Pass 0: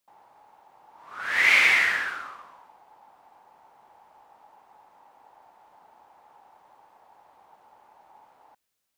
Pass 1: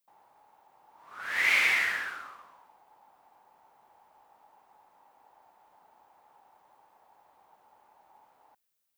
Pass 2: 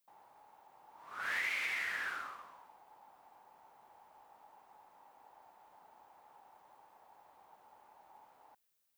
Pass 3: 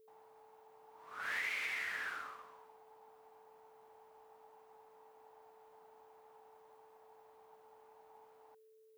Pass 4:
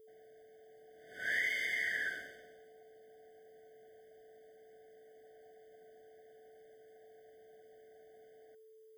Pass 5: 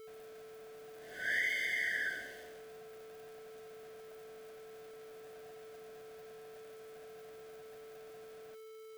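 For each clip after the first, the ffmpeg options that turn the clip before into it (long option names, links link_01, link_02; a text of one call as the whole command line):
ffmpeg -i in.wav -af "highshelf=frequency=12000:gain=10.5,volume=-6dB" out.wav
ffmpeg -i in.wav -af "acompressor=threshold=-33dB:ratio=16" out.wav
ffmpeg -i in.wav -af "aeval=exprs='val(0)+0.001*sin(2*PI*440*n/s)':channel_layout=same,volume=-2.5dB" out.wav
ffmpeg -i in.wav -af "afftfilt=real='re*eq(mod(floor(b*sr/1024/740),2),0)':imag='im*eq(mod(floor(b*sr/1024/740),2),0)':win_size=1024:overlap=0.75,volume=5.5dB" out.wav
ffmpeg -i in.wav -af "aeval=exprs='val(0)+0.5*0.00316*sgn(val(0))':channel_layout=same" out.wav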